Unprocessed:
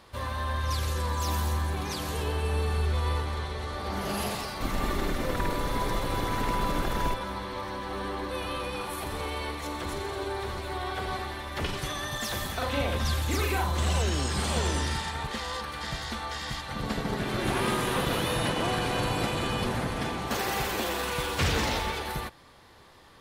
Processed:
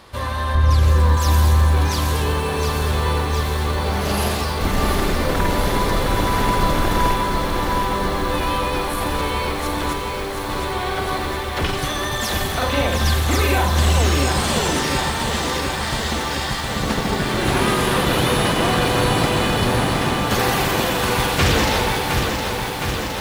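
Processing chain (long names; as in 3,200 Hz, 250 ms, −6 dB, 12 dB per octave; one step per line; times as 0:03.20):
0:00.55–0:01.17: spectral tilt −2 dB per octave
0:09.93–0:10.50: hard clipping −39 dBFS, distortion −24 dB
feedback echo at a low word length 714 ms, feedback 80%, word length 8 bits, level −5.5 dB
level +8.5 dB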